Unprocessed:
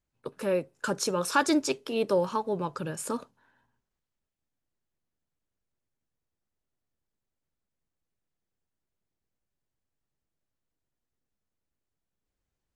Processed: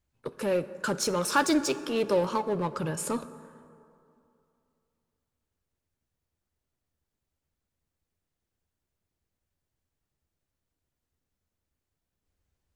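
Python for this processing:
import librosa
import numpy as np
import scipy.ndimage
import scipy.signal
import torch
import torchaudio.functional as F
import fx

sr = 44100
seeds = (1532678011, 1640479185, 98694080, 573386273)

p1 = fx.peak_eq(x, sr, hz=74.0, db=9.0, octaves=0.67)
p2 = 10.0 ** (-30.5 / 20.0) * (np.abs((p1 / 10.0 ** (-30.5 / 20.0) + 3.0) % 4.0 - 2.0) - 1.0)
p3 = p1 + (p2 * 10.0 ** (-8.5 / 20.0))
y = fx.rev_plate(p3, sr, seeds[0], rt60_s=2.7, hf_ratio=0.45, predelay_ms=0, drr_db=13.5)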